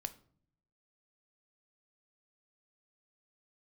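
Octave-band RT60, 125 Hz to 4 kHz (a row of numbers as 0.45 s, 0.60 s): 1.0 s, 0.90 s, 0.60 s, 0.50 s, 0.40 s, 0.35 s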